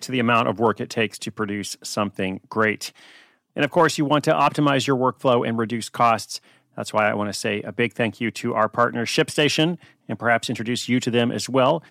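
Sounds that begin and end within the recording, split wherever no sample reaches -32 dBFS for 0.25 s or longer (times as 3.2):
3.57–6.37
6.78–9.75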